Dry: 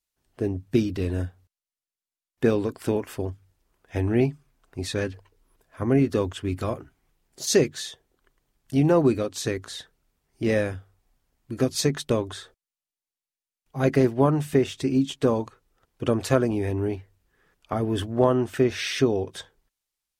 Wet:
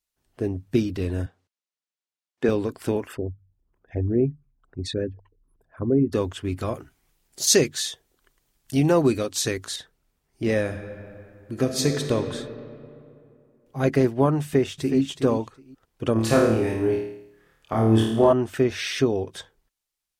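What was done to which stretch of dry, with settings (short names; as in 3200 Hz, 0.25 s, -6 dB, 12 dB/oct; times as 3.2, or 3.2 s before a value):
1.26–2.49 BPF 200–7100 Hz
3.07–6.13 formant sharpening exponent 2
6.74–9.76 high shelf 2600 Hz +8.5 dB
10.6–12.14 reverb throw, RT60 2.6 s, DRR 4.5 dB
14.41–15 echo throw 0.37 s, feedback 15%, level -9.5 dB
16.13–18.33 flutter echo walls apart 4.6 m, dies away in 0.73 s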